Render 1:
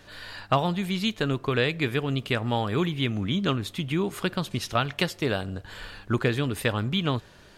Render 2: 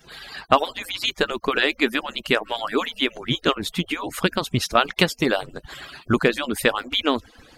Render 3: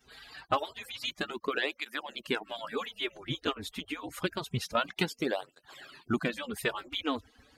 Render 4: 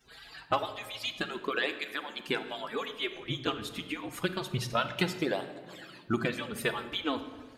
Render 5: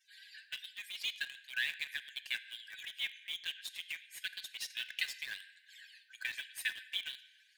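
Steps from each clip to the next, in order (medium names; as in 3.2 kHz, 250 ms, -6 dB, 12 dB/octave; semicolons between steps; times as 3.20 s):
harmonic-percussive separation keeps percussive; trim +7.5 dB
cancelling through-zero flanger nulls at 0.27 Hz, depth 6.1 ms; trim -8.5 dB
simulated room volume 1400 m³, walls mixed, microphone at 0.73 m
brick-wall FIR high-pass 1.5 kHz; in parallel at -9 dB: word length cut 6-bit, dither none; on the sum: trim -5 dB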